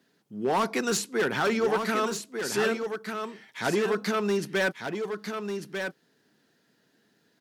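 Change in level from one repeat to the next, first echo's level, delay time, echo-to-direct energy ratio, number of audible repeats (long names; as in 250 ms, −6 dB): repeats not evenly spaced, −6.5 dB, 1,196 ms, −6.5 dB, 1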